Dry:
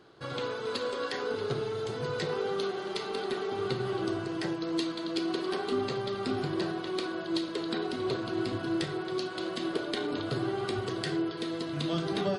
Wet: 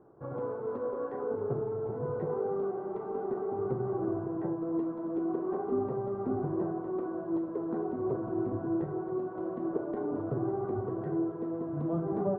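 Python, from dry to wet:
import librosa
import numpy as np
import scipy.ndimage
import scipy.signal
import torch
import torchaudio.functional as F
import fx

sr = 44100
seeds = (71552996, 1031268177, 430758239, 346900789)

y = scipy.signal.sosfilt(scipy.signal.butter(4, 1000.0, 'lowpass', fs=sr, output='sos'), x)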